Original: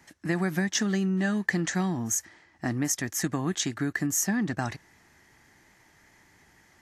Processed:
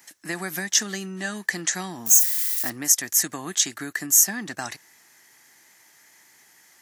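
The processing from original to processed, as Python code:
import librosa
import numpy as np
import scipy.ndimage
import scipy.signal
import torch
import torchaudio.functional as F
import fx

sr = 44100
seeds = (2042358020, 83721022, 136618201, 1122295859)

y = fx.crossing_spikes(x, sr, level_db=-29.5, at=(2.06, 2.7))
y = scipy.signal.sosfilt(scipy.signal.butter(2, 89.0, 'highpass', fs=sr, output='sos'), y)
y = fx.riaa(y, sr, side='recording')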